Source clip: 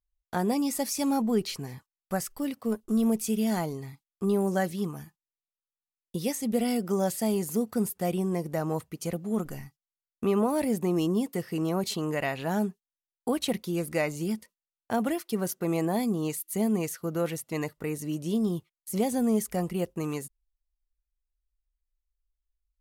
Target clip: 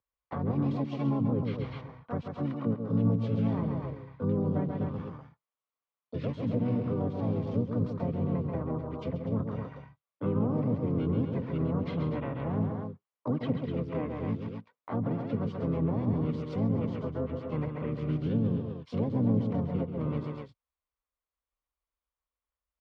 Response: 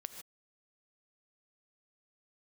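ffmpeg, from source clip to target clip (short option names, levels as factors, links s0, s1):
-filter_complex "[0:a]lowshelf=f=220:g=2.5,asplit=4[s0][s1][s2][s3];[s1]asetrate=22050,aresample=44100,atempo=2,volume=0.794[s4];[s2]asetrate=35002,aresample=44100,atempo=1.25992,volume=0.631[s5];[s3]asetrate=55563,aresample=44100,atempo=0.793701,volume=0.501[s6];[s0][s4][s5][s6]amix=inputs=4:normalize=0,highpass=130,equalizer=f=200:t=q:w=4:g=-9,equalizer=f=350:t=q:w=4:g=-9,equalizer=f=500:t=q:w=4:g=5,equalizer=f=1100:t=q:w=4:g=8,equalizer=f=1700:t=q:w=4:g=-5,equalizer=f=2600:t=q:w=4:g=-4,lowpass=f=2900:w=0.5412,lowpass=f=2900:w=1.3066,aecho=1:1:134.1|247.8:0.447|0.316,acrossover=split=310[s7][s8];[s8]acompressor=threshold=0.0126:ratio=12[s9];[s7][s9]amix=inputs=2:normalize=0"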